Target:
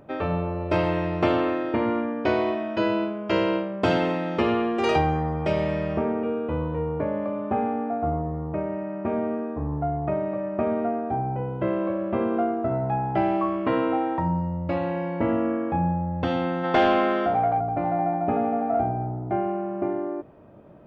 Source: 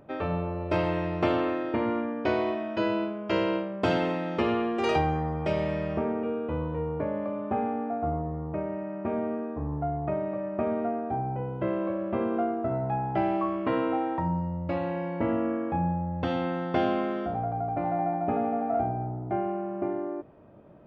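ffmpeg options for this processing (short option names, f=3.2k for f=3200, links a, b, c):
-filter_complex "[0:a]asplit=3[a][b][c];[a]afade=t=out:st=16.63:d=0.02[d];[b]asplit=2[e][f];[f]highpass=f=720:p=1,volume=14dB,asoftclip=type=tanh:threshold=-12.5dB[g];[e][g]amix=inputs=2:normalize=0,lowpass=f=4.2k:p=1,volume=-6dB,afade=t=in:st=16.63:d=0.02,afade=t=out:st=17.59:d=0.02[h];[c]afade=t=in:st=17.59:d=0.02[i];[d][h][i]amix=inputs=3:normalize=0,volume=3.5dB"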